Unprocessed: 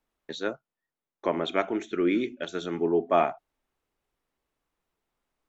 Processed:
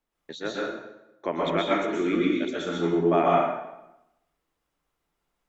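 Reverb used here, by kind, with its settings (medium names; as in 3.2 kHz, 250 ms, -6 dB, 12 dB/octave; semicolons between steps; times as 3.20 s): plate-style reverb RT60 0.89 s, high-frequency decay 0.8×, pre-delay 110 ms, DRR -4.5 dB; trim -2.5 dB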